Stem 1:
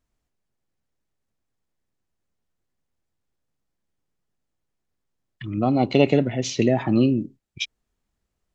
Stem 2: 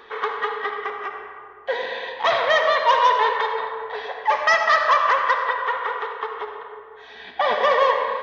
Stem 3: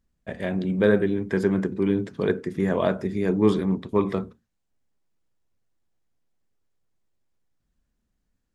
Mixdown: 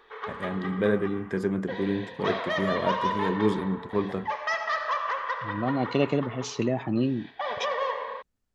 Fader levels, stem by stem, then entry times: −7.0, −11.0, −5.0 decibels; 0.00, 0.00, 0.00 seconds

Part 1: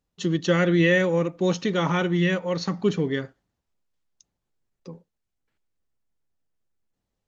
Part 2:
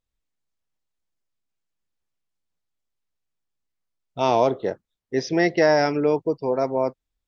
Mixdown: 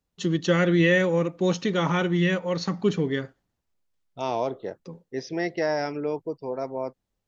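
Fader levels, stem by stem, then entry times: −0.5, −8.0 decibels; 0.00, 0.00 seconds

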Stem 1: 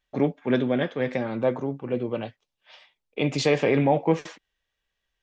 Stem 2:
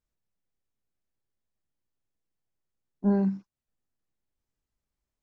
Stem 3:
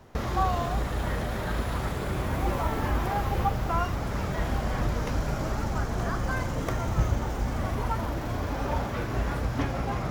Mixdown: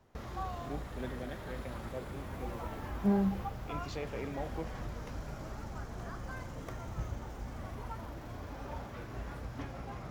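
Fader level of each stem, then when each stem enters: −19.5, −4.5, −13.5 decibels; 0.50, 0.00, 0.00 seconds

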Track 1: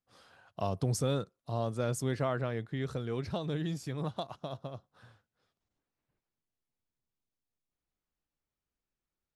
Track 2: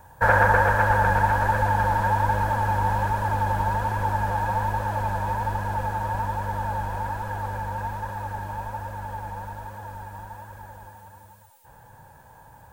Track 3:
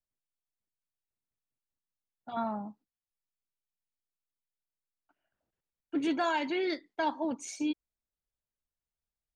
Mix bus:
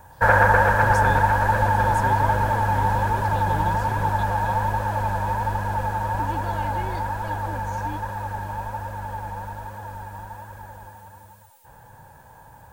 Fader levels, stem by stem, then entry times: −1.0, +2.0, −8.0 decibels; 0.00, 0.00, 0.25 seconds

